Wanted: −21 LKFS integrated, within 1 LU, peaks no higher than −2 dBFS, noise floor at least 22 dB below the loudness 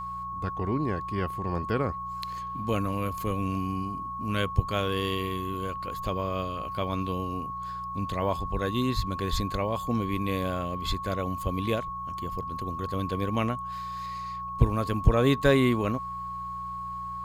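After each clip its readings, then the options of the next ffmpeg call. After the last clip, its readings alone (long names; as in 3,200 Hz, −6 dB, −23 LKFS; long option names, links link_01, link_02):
mains hum 60 Hz; hum harmonics up to 180 Hz; level of the hum −43 dBFS; interfering tone 1,100 Hz; level of the tone −33 dBFS; integrated loudness −29.5 LKFS; sample peak −7.5 dBFS; target loudness −21.0 LKFS
→ -af "bandreject=frequency=60:width_type=h:width=4,bandreject=frequency=120:width_type=h:width=4,bandreject=frequency=180:width_type=h:width=4"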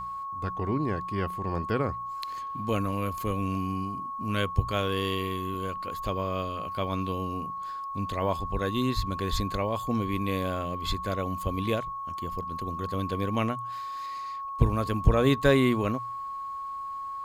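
mains hum none found; interfering tone 1,100 Hz; level of the tone −33 dBFS
→ -af "bandreject=frequency=1100:width=30"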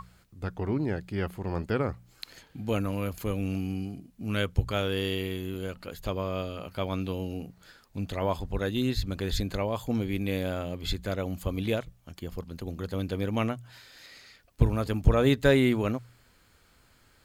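interfering tone none found; integrated loudness −30.5 LKFS; sample peak −8.5 dBFS; target loudness −21.0 LKFS
→ -af "volume=9.5dB,alimiter=limit=-2dB:level=0:latency=1"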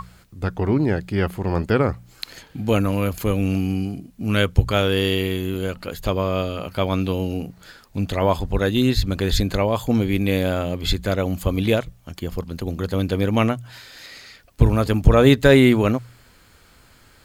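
integrated loudness −21.0 LKFS; sample peak −2.0 dBFS; background noise floor −53 dBFS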